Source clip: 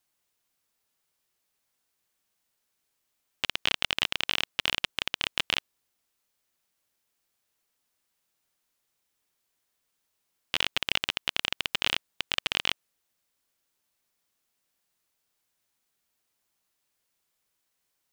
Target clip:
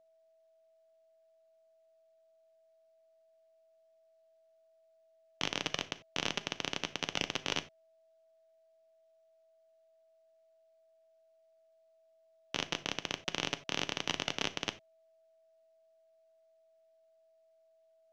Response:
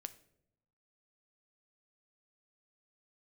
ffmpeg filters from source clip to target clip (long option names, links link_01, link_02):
-filter_complex "[0:a]areverse,aeval=exprs='max(val(0),0)':channel_layout=same,acrossover=split=150 7300:gain=0.224 1 0.1[link_01][link_02][link_03];[link_01][link_02][link_03]amix=inputs=3:normalize=0,aeval=exprs='val(0)+0.00112*sin(2*PI*650*n/s)':channel_layout=same[link_04];[1:a]atrim=start_sample=2205,atrim=end_sample=4410[link_05];[link_04][link_05]afir=irnorm=-1:irlink=0"